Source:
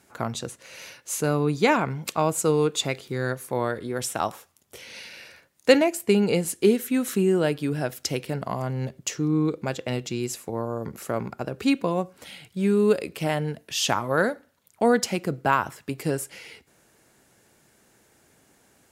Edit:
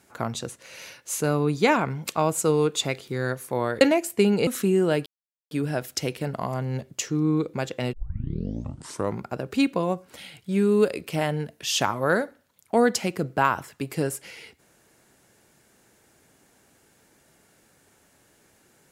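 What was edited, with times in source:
3.81–5.71 s: delete
6.37–7.00 s: delete
7.59 s: insert silence 0.45 s
10.01 s: tape start 1.29 s

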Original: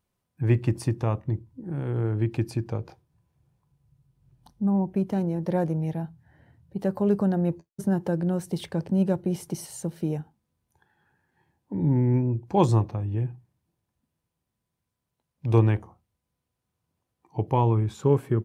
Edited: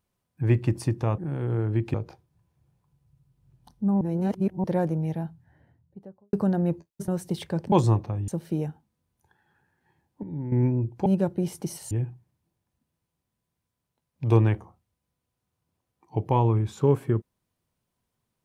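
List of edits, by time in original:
1.18–1.64 s: delete
2.40–2.73 s: delete
4.80–5.43 s: reverse
6.00–7.12 s: studio fade out
7.87–8.30 s: delete
8.94–9.79 s: swap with 12.57–13.13 s
11.74–12.03 s: gain -10.5 dB

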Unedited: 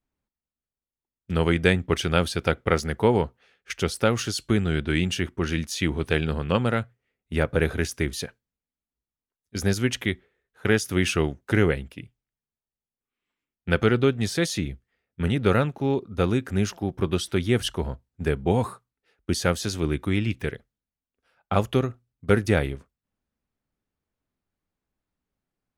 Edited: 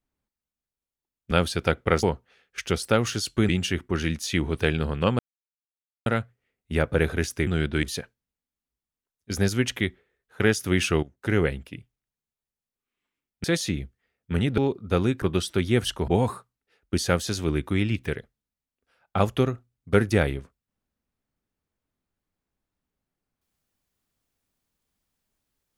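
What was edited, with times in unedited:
1.31–2.11 s: delete
2.83–3.15 s: delete
4.61–4.97 s: move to 8.08 s
6.67 s: insert silence 0.87 s
11.28–11.74 s: fade in, from -16 dB
13.69–14.33 s: delete
15.47–15.85 s: delete
16.49–17.00 s: delete
17.86–18.44 s: delete

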